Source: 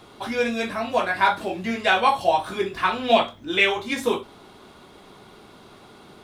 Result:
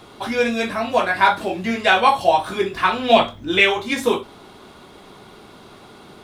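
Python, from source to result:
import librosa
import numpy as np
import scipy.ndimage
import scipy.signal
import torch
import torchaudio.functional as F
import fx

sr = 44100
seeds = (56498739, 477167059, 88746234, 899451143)

y = fx.low_shelf(x, sr, hz=150.0, db=9.0, at=(3.16, 3.61))
y = F.gain(torch.from_numpy(y), 4.0).numpy()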